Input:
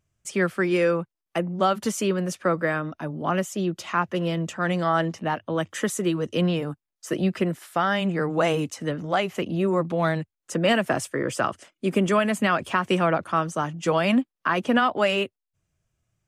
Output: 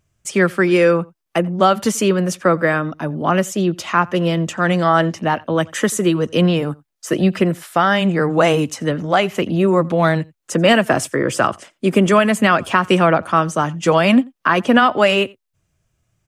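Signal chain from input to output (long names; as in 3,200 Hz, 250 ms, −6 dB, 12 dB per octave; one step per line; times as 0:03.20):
slap from a distant wall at 15 metres, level −25 dB
level +8 dB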